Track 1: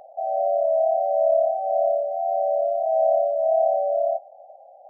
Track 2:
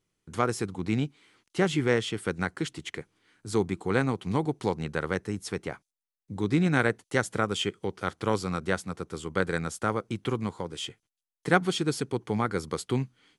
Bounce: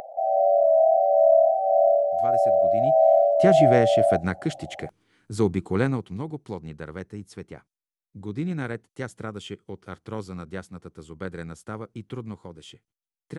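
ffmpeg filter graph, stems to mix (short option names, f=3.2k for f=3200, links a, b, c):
-filter_complex "[0:a]acompressor=mode=upward:threshold=-37dB:ratio=2.5,volume=0dB[a];[1:a]adelay=1850,volume=-1dB,afade=t=in:st=2.8:d=0.41:silence=0.223872,afade=t=out:st=5.75:d=0.43:silence=0.334965[b];[a][b]amix=inputs=2:normalize=0,lowshelf=f=450:g=7.5"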